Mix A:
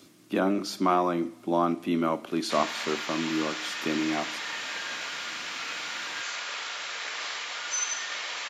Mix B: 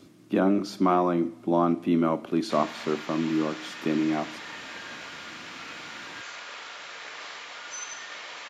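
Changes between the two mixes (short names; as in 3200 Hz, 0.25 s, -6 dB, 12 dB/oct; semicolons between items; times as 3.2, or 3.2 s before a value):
background -3.5 dB; master: add tilt -2 dB/oct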